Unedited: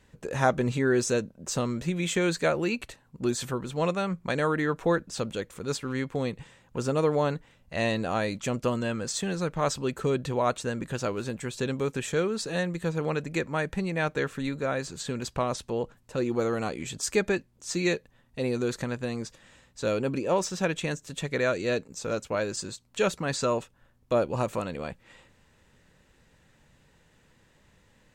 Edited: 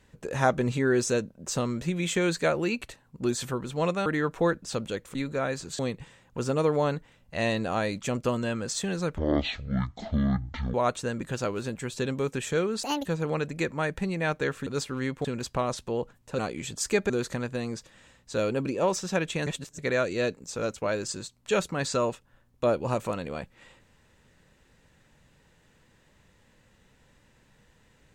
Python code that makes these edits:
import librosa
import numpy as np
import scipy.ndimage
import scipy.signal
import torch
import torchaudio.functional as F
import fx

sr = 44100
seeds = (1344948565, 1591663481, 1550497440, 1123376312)

y = fx.edit(x, sr, fx.cut(start_s=4.06, length_s=0.45),
    fx.swap(start_s=5.6, length_s=0.58, other_s=14.42, other_length_s=0.64),
    fx.speed_span(start_s=9.57, length_s=0.78, speed=0.5),
    fx.speed_span(start_s=12.44, length_s=0.37, speed=1.64),
    fx.cut(start_s=16.2, length_s=0.41),
    fx.cut(start_s=17.32, length_s=1.26),
    fx.reverse_span(start_s=20.95, length_s=0.32), tone=tone)